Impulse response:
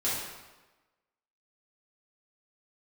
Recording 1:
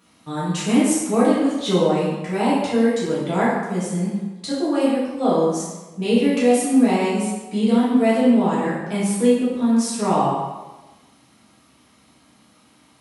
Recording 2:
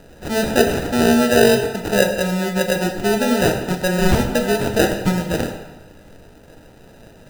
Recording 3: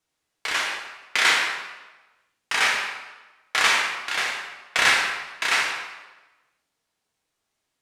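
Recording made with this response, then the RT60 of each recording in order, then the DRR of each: 1; 1.2, 1.2, 1.2 s; -10.0, 3.5, -2.5 dB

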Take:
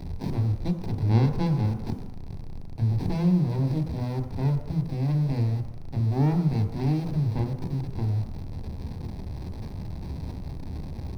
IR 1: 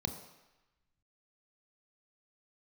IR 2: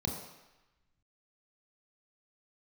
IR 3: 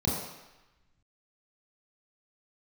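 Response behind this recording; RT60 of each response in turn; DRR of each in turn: 1; 1.0, 1.0, 1.0 s; 5.5, 0.0, -6.0 dB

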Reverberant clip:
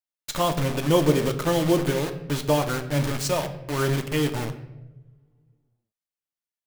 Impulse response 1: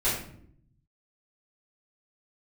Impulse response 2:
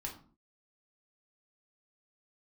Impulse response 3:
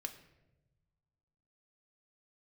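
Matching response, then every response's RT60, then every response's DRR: 3; 0.65, 0.45, 1.0 s; -12.0, -0.5, 5.0 dB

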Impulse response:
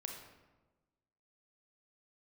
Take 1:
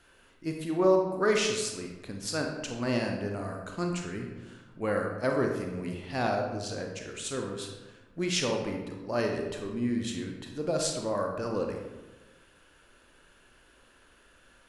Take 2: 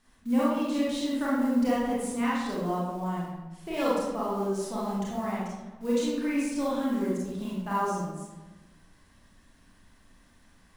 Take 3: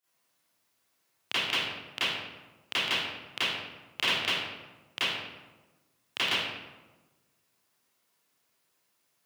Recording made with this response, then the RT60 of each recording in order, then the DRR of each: 1; 1.2, 1.2, 1.2 s; 1.5, -8.0, -17.0 dB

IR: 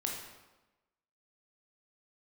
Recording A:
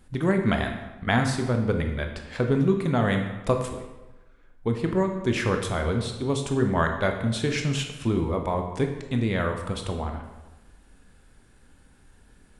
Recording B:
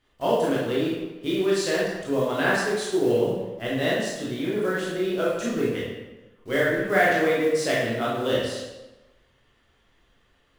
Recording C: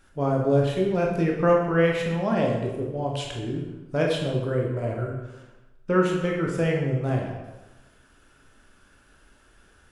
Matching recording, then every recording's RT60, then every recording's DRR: C; 1.1, 1.1, 1.1 s; 4.0, -6.5, -1.0 dB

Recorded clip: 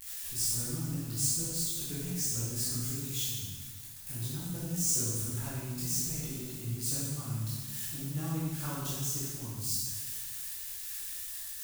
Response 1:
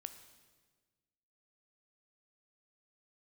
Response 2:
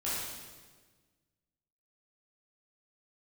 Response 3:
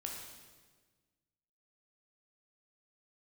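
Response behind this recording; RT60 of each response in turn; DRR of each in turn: 2; 1.4, 1.4, 1.4 s; 9.0, -10.0, -0.5 dB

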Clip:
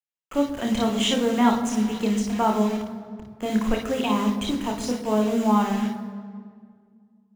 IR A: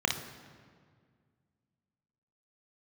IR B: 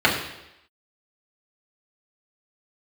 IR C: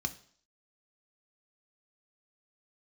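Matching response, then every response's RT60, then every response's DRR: A; 1.9, 0.85, 0.55 s; 2.5, -5.0, 7.5 dB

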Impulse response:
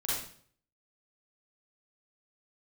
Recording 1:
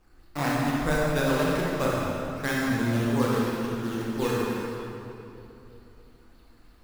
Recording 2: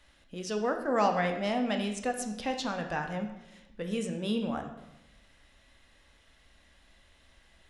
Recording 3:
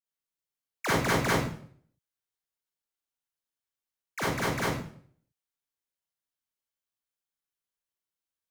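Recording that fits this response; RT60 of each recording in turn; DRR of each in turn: 3; 3.0, 0.95, 0.55 s; -5.5, 4.5, -8.5 dB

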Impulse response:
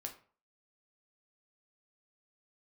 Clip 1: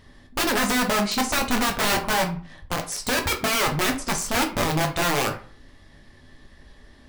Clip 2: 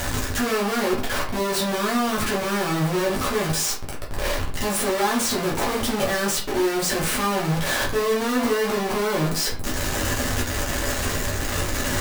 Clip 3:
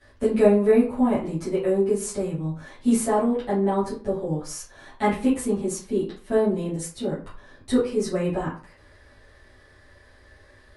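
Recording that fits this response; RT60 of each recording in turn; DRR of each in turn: 1; 0.45, 0.45, 0.45 s; 2.5, -4.5, -12.5 dB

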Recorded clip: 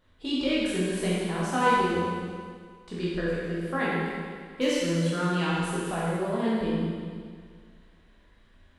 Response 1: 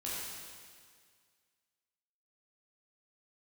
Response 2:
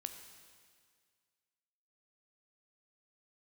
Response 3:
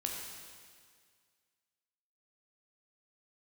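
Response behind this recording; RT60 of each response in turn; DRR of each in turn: 1; 1.9, 1.9, 1.9 s; -8.0, 6.5, -0.5 dB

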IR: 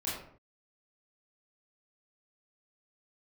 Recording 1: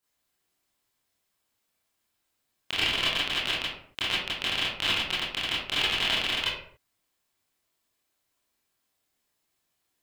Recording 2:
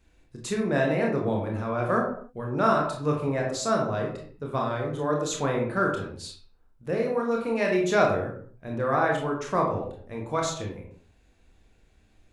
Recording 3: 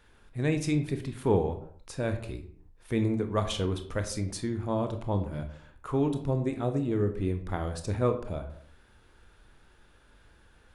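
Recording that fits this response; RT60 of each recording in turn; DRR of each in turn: 1; 0.55, 0.55, 0.55 s; -9.0, -0.5, 7.0 dB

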